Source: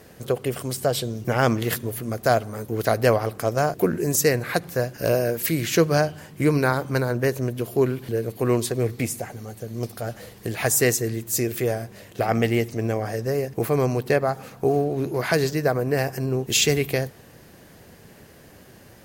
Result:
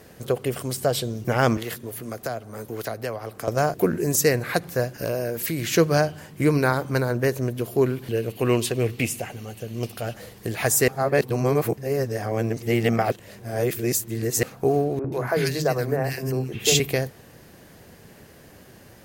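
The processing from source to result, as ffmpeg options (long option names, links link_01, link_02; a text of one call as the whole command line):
ffmpeg -i in.wav -filter_complex "[0:a]asettb=1/sr,asplit=3[link_01][link_02][link_03];[link_01]atrim=end=1.574[link_04];[link_02]atrim=start=1.57:end=3.48,asetpts=PTS-STARTPTS,afade=type=in:duration=0.004:curve=qsin,afade=type=out:start_time=1.906:duration=0.004:curve=qsin,acrossover=split=220|540[link_05][link_06][link_07];[link_05]acompressor=threshold=-41dB:ratio=4[link_08];[link_06]acompressor=threshold=-36dB:ratio=4[link_09];[link_07]acompressor=threshold=-33dB:ratio=4[link_10];[link_08][link_09][link_10]amix=inputs=3:normalize=0[link_11];[link_03]atrim=start=3.476[link_12];[link_04][link_11]acrossfade=duration=0.004:curve1=hsin:curve2=qsin[link_13];[link_13][link_12]acrossfade=duration=0.004:curve1=qsin:curve2=hsin,asettb=1/sr,asplit=3[link_14][link_15][link_16];[link_14]atrim=end=5.004[link_17];[link_15]atrim=start=5:end=5.7,asetpts=PTS-STARTPTS,afade=type=in:duration=0.004:curve=qsin,afade=type=out:start_time=0.696:duration=0.004:curve=qsin,acompressor=threshold=-23dB:ratio=3:attack=3.2:release=140:knee=1:detection=peak[link_18];[link_16]atrim=start=5.696[link_19];[link_17][link_18]acrossfade=duration=0.004:curve1=hsin:curve2=qsin[link_20];[link_20][link_19]acrossfade=duration=0.004:curve1=qsin:curve2=hsin,asettb=1/sr,asplit=3[link_21][link_22][link_23];[link_21]atrim=end=8.094[link_24];[link_22]atrim=start=8.09:end=10.14,asetpts=PTS-STARTPTS,afade=type=in:duration=0.004:curve=qsin,afade=type=out:start_time=2.046:duration=0.004:curve=qsin,equalizer=frequency=2800:width=3.2:gain=13[link_25];[link_23]atrim=start=10.136[link_26];[link_24][link_25]acrossfade=duration=0.004:curve1=hsin:curve2=qsin[link_27];[link_27][link_26]acrossfade=duration=0.004:curve1=qsin:curve2=hsin,asettb=1/sr,asplit=3[link_28][link_29][link_30];[link_28]atrim=end=14.994[link_31];[link_29]atrim=start=14.99:end=16.8,asetpts=PTS-STARTPTS,afade=type=in:duration=0.004:curve=qsin,afade=type=out:start_time=1.806:duration=0.004:curve=qsin,acrossover=split=290|1700[link_32][link_33][link_34];[link_32]adelay=50[link_35];[link_34]adelay=130[link_36];[link_35][link_33][link_36]amix=inputs=3:normalize=0,atrim=end_sample=79821[link_37];[link_30]atrim=start=16.796[link_38];[link_31][link_37]acrossfade=duration=0.004:curve1=hsin:curve2=qsin[link_39];[link_39][link_38]acrossfade=duration=0.004:curve1=qsin:curve2=hsin,asplit=3[link_40][link_41][link_42];[link_40]atrim=end=10.882[link_43];[link_41]atrim=start=10.878:end=14.432,asetpts=PTS-STARTPTS,areverse[link_44];[link_42]atrim=start=14.428[link_45];[link_43][link_44]acrossfade=duration=0.004:curve1=hsin:curve2=hsin[link_46];[link_46][link_45]acrossfade=duration=0.004:curve1=hsin:curve2=hsin" out.wav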